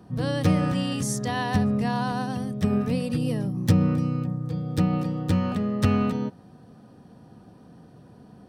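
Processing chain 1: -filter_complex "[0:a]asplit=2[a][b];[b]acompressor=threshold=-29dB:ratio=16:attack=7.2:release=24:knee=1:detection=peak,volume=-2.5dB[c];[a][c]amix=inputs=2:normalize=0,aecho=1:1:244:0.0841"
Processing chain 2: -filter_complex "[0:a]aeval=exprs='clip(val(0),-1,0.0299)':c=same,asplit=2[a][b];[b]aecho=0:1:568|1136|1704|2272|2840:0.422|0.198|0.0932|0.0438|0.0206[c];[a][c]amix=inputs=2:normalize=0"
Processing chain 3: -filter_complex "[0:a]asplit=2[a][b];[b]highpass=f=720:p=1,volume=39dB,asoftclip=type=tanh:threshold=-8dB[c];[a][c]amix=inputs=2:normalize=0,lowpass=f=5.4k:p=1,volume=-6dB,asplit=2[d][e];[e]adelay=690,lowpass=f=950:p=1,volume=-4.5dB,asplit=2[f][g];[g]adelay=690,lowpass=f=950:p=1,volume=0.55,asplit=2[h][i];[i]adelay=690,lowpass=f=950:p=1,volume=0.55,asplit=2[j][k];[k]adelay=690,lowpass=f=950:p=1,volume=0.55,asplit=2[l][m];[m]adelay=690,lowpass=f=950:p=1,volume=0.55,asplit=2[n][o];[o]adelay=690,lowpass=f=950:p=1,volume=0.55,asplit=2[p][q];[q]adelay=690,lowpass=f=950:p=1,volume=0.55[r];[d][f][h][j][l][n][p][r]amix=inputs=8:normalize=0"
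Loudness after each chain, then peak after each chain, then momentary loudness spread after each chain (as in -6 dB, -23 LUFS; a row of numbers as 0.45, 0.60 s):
-22.5, -27.5, -14.5 LUFS; -7.0, -7.5, -4.5 dBFS; 5, 16, 10 LU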